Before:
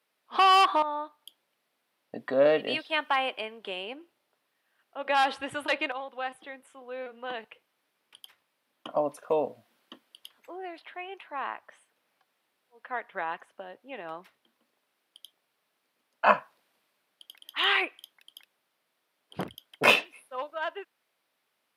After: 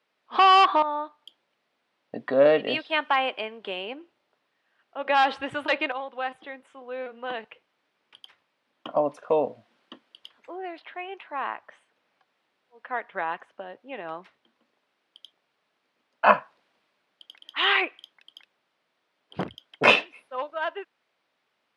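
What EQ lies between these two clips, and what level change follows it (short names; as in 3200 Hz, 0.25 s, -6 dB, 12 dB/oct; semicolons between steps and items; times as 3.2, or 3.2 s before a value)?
air absorption 100 m; +4.0 dB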